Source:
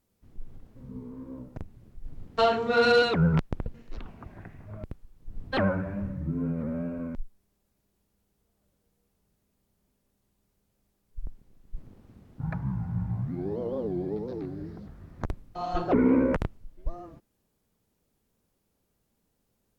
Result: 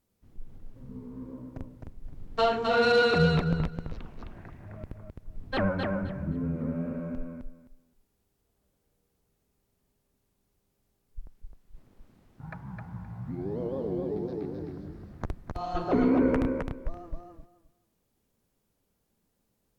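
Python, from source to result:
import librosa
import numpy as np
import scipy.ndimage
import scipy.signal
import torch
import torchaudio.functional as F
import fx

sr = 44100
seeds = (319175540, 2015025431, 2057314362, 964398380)

y = fx.low_shelf(x, sr, hz=400.0, db=-10.0, at=(11.21, 13.28))
y = fx.echo_feedback(y, sr, ms=261, feedback_pct=19, wet_db=-4.0)
y = y * librosa.db_to_amplitude(-2.0)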